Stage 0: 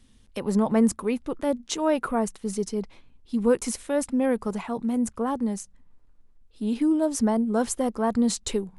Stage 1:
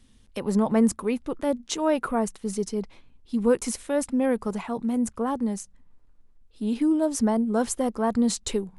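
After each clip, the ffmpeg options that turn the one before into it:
ffmpeg -i in.wav -af anull out.wav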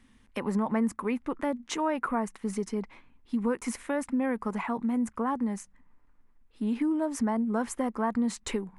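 ffmpeg -i in.wav -af "equalizer=frequency=250:width_type=o:width=1:gain=7,equalizer=frequency=1000:width_type=o:width=1:gain=9,equalizer=frequency=2000:width_type=o:width=1:gain=11,equalizer=frequency=4000:width_type=o:width=1:gain=-3,acompressor=threshold=-21dB:ratio=2.5,volume=-6dB" out.wav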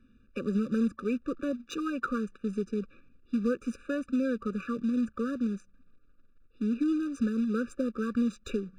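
ffmpeg -i in.wav -af "acrusher=bits=4:mode=log:mix=0:aa=0.000001,adynamicsmooth=sensitivity=4.5:basefreq=3000,afftfilt=real='re*eq(mod(floor(b*sr/1024/580),2),0)':imag='im*eq(mod(floor(b*sr/1024/580),2),0)':win_size=1024:overlap=0.75" out.wav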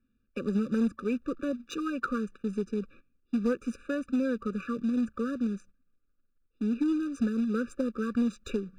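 ffmpeg -i in.wav -af "agate=range=-13dB:threshold=-50dB:ratio=16:detection=peak,aeval=exprs='0.126*(cos(1*acos(clip(val(0)/0.126,-1,1)))-cos(1*PI/2))+0.00891*(cos(3*acos(clip(val(0)/0.126,-1,1)))-cos(3*PI/2))+0.00126*(cos(5*acos(clip(val(0)/0.126,-1,1)))-cos(5*PI/2))':channel_layout=same,volume=1.5dB" out.wav

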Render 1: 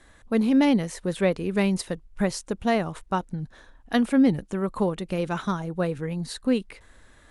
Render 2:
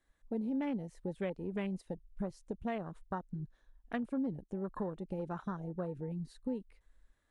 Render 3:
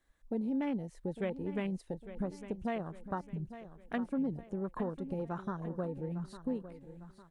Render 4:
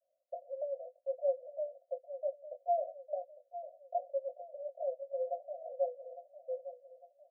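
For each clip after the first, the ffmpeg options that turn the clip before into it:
ffmpeg -i in.wav -af "afwtdn=0.0316,acompressor=threshold=-29dB:ratio=2.5,volume=-7.5dB" out.wav
ffmpeg -i in.wav -af "aecho=1:1:854|1708|2562|3416:0.224|0.0985|0.0433|0.0191,volume=1.5dB" out.wav
ffmpeg -i in.wav -filter_complex "[0:a]asuperpass=centerf=610:order=20:qfactor=2.8,asplit=2[link_01][link_02];[link_02]adelay=20,volume=-7dB[link_03];[link_01][link_03]amix=inputs=2:normalize=0,volume=7.5dB" out.wav

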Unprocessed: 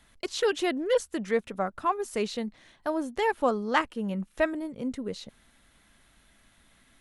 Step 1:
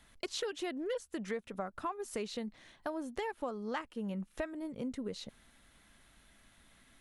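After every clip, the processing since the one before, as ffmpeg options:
ffmpeg -i in.wav -af "acompressor=threshold=-33dB:ratio=6,volume=-2dB" out.wav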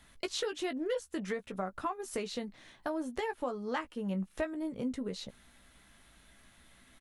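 ffmpeg -i in.wav -filter_complex "[0:a]asplit=2[link_01][link_02];[link_02]adelay=16,volume=-8dB[link_03];[link_01][link_03]amix=inputs=2:normalize=0,volume=2dB" out.wav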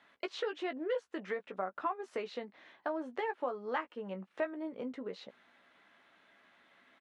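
ffmpeg -i in.wav -af "highpass=380,lowpass=2500,volume=1dB" out.wav

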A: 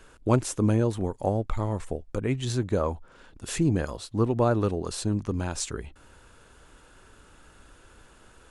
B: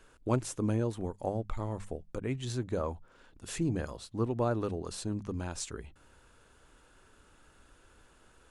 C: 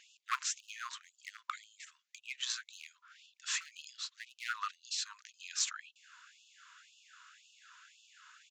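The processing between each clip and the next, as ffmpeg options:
ffmpeg -i in.wav -af "bandreject=frequency=50:width_type=h:width=6,bandreject=frequency=100:width_type=h:width=6,bandreject=frequency=150:width_type=h:width=6,bandreject=frequency=200:width_type=h:width=6,volume=-7dB" out.wav
ffmpeg -i in.wav -af "aresample=16000,aresample=44100,volume=25.5dB,asoftclip=hard,volume=-25.5dB,afftfilt=real='re*gte(b*sr/1024,930*pow(2600/930,0.5+0.5*sin(2*PI*1.9*pts/sr)))':imag='im*gte(b*sr/1024,930*pow(2600/930,0.5+0.5*sin(2*PI*1.9*pts/sr)))':win_size=1024:overlap=0.75,volume=8dB" out.wav

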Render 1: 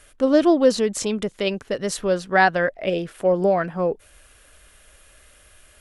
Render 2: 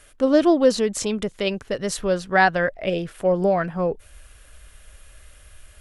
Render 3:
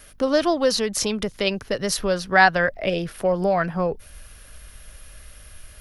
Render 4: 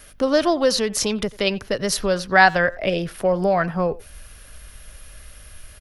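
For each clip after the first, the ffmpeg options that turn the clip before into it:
ffmpeg -i in.wav -af "asubboost=boost=2.5:cutoff=160" out.wav
ffmpeg -i in.wav -filter_complex "[0:a]acrossover=split=150|640|3300[link_01][link_02][link_03][link_04];[link_02]acompressor=threshold=-28dB:ratio=6[link_05];[link_01][link_05][link_03][link_04]amix=inputs=4:normalize=0,aexciter=amount=1.7:drive=1:freq=4400,aeval=exprs='val(0)+0.001*(sin(2*PI*50*n/s)+sin(2*PI*2*50*n/s)/2+sin(2*PI*3*50*n/s)/3+sin(2*PI*4*50*n/s)/4+sin(2*PI*5*50*n/s)/5)':channel_layout=same,volume=3dB" out.wav
ffmpeg -i in.wav -filter_complex "[0:a]asplit=2[link_01][link_02];[link_02]adelay=90,highpass=300,lowpass=3400,asoftclip=type=hard:threshold=-12dB,volume=-20dB[link_03];[link_01][link_03]amix=inputs=2:normalize=0,volume=1.5dB" out.wav

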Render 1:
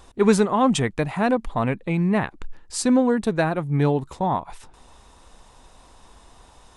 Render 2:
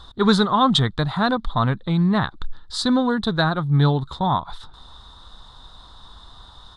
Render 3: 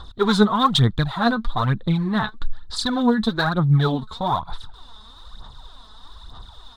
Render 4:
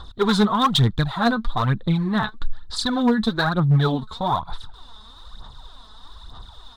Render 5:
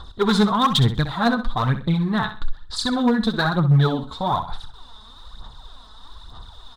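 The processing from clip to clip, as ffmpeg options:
ffmpeg -i in.wav -af "firequalizer=gain_entry='entry(130,0);entry(250,-7);entry(490,-10);entry(1300,3);entry(2500,-18);entry(3600,11);entry(5800,-11);entry(11000,-16)':delay=0.05:min_phase=1,volume=6dB" out.wav
ffmpeg -i in.wav -af "aphaser=in_gain=1:out_gain=1:delay=4.7:decay=0.64:speed=1.1:type=sinusoidal,volume=-2.5dB" out.wav
ffmpeg -i in.wav -af "asoftclip=type=hard:threshold=-11.5dB" out.wav
ffmpeg -i in.wav -af "aecho=1:1:64|128|192:0.282|0.0789|0.0221" out.wav

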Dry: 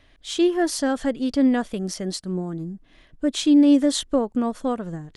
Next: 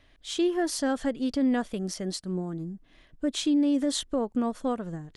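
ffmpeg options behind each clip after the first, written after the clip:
ffmpeg -i in.wav -af "alimiter=limit=-14dB:level=0:latency=1:release=61,volume=-4dB" out.wav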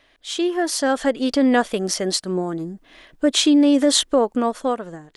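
ffmpeg -i in.wav -af "bass=frequency=250:gain=-14,treble=frequency=4000:gain=-1,dynaudnorm=framelen=220:gausssize=9:maxgain=7.5dB,volume=6.5dB" out.wav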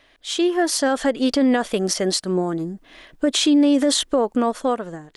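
ffmpeg -i in.wav -af "alimiter=limit=-12dB:level=0:latency=1:release=39,volume=2dB" out.wav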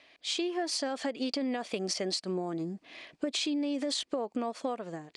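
ffmpeg -i in.wav -af "highpass=140,equalizer=frequency=690:width_type=q:width=4:gain=3,equalizer=frequency=1500:width_type=q:width=4:gain=-4,equalizer=frequency=2400:width_type=q:width=4:gain=8,equalizer=frequency=4600:width_type=q:width=4:gain=7,lowpass=frequency=8900:width=0.5412,lowpass=frequency=8900:width=1.3066,acompressor=threshold=-24dB:ratio=6,volume=-5.5dB" out.wav

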